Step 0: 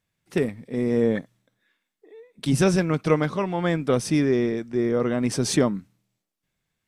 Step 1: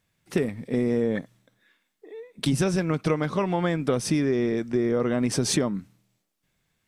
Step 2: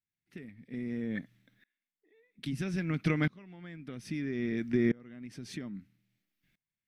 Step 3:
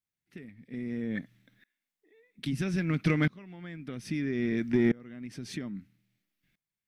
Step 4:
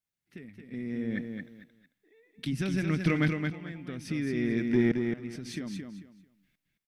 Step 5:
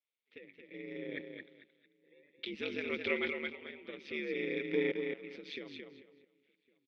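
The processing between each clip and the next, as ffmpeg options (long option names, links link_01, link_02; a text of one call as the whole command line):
ffmpeg -i in.wav -af "acompressor=threshold=-26dB:ratio=6,volume=5.5dB" out.wav
ffmpeg -i in.wav -af "equalizer=frequency=250:width_type=o:width=1:gain=4,equalizer=frequency=500:width_type=o:width=1:gain=-9,equalizer=frequency=1000:width_type=o:width=1:gain=-10,equalizer=frequency=2000:width_type=o:width=1:gain=7,equalizer=frequency=8000:width_type=o:width=1:gain=-10,aeval=exprs='val(0)*pow(10,-27*if(lt(mod(-0.61*n/s,1),2*abs(-0.61)/1000),1-mod(-0.61*n/s,1)/(2*abs(-0.61)/1000),(mod(-0.61*n/s,1)-2*abs(-0.61)/1000)/(1-2*abs(-0.61)/1000))/20)':channel_layout=same" out.wav
ffmpeg -i in.wav -filter_complex "[0:a]dynaudnorm=framelen=260:gausssize=9:maxgain=3.5dB,asplit=2[link_01][link_02];[link_02]volume=23.5dB,asoftclip=hard,volume=-23.5dB,volume=-9dB[link_03];[link_01][link_03]amix=inputs=2:normalize=0,volume=-2.5dB" out.wav
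ffmpeg -i in.wav -af "aecho=1:1:221|442|663:0.531|0.122|0.0281" out.wav
ffmpeg -i in.wav -filter_complex "[0:a]aeval=exprs='val(0)*sin(2*PI*73*n/s)':channel_layout=same,highpass=450,equalizer=frequency=480:width_type=q:width=4:gain=8,equalizer=frequency=720:width_type=q:width=4:gain=-8,equalizer=frequency=1100:width_type=q:width=4:gain=-4,equalizer=frequency=1600:width_type=q:width=4:gain=-8,equalizer=frequency=2300:width_type=q:width=4:gain=7,equalizer=frequency=3500:width_type=q:width=4:gain=7,lowpass=frequency=3800:width=0.5412,lowpass=frequency=3800:width=1.3066,asplit=2[link_01][link_02];[link_02]adelay=1108,volume=-28dB,highshelf=frequency=4000:gain=-24.9[link_03];[link_01][link_03]amix=inputs=2:normalize=0" out.wav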